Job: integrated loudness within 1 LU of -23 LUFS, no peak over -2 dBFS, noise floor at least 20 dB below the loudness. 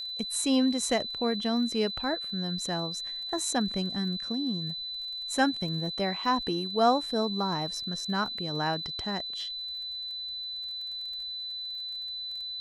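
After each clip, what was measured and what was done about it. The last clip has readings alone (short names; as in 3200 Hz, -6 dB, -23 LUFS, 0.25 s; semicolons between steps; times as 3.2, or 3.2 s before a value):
ticks 27/s; steady tone 4000 Hz; tone level -34 dBFS; loudness -30.0 LUFS; peak -12.0 dBFS; loudness target -23.0 LUFS
-> de-click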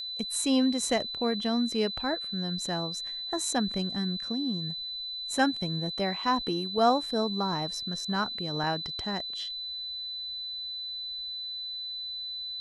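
ticks 0.079/s; steady tone 4000 Hz; tone level -34 dBFS
-> notch 4000 Hz, Q 30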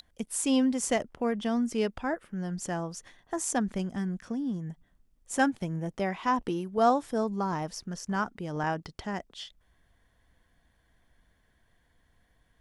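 steady tone none; loudness -30.5 LUFS; peak -12.5 dBFS; loudness target -23.0 LUFS
-> gain +7.5 dB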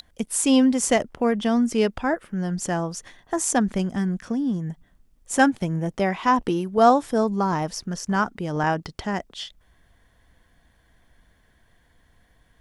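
loudness -23.0 LUFS; peak -5.0 dBFS; noise floor -62 dBFS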